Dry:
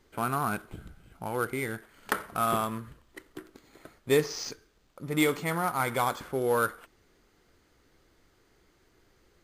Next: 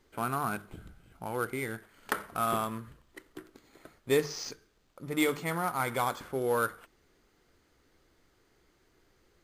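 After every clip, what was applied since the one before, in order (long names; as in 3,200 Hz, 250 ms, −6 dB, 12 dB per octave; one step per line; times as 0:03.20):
mains-hum notches 50/100/150/200 Hz
level −2.5 dB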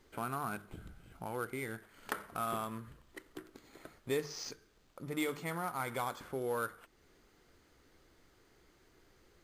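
downward compressor 1.5 to 1, threshold −50 dBFS, peak gain reduction 10.5 dB
level +1.5 dB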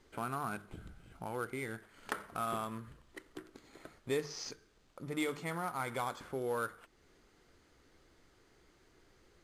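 low-pass filter 11,000 Hz 12 dB per octave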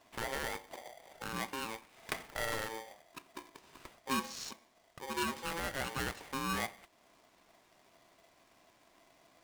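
ring modulator with a square carrier 670 Hz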